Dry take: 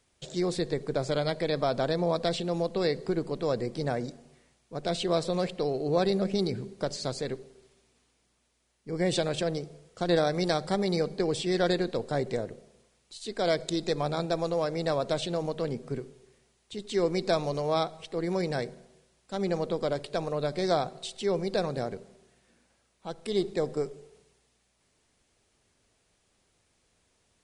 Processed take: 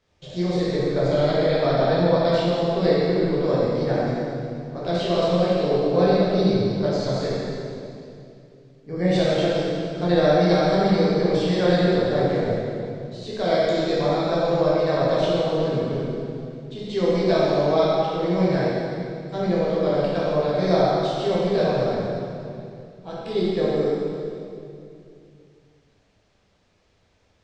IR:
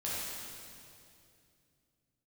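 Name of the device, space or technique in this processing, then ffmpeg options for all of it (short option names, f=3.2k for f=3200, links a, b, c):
swimming-pool hall: -filter_complex "[0:a]lowpass=f=6.2k:w=0.5412,lowpass=f=6.2k:w=1.3066[a];[1:a]atrim=start_sample=2205[b];[a][b]afir=irnorm=-1:irlink=0,highshelf=f=3.9k:g=-7,volume=3.5dB"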